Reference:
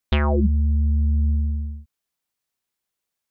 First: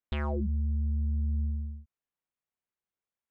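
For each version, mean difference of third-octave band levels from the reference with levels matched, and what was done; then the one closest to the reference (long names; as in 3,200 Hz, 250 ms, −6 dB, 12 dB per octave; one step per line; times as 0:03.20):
1.0 dB: adaptive Wiener filter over 9 samples
brickwall limiter −16.5 dBFS, peak gain reduction 7 dB
level −7.5 dB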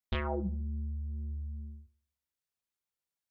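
2.5 dB: multi-voice chorus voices 4, 0.72 Hz, delay 21 ms, depth 1.2 ms
feedback echo with a low-pass in the loop 71 ms, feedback 44%, low-pass 930 Hz, level −15 dB
level −7.5 dB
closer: first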